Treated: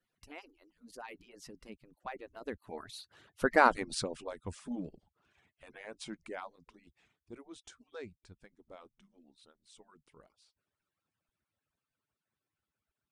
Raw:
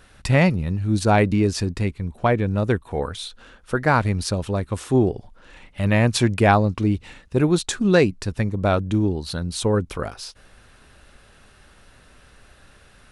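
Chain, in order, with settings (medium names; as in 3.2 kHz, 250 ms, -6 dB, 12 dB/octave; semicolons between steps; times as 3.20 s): harmonic-percussive separation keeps percussive; Doppler pass-by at 3.63 s, 28 m/s, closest 7.1 m; trim -4 dB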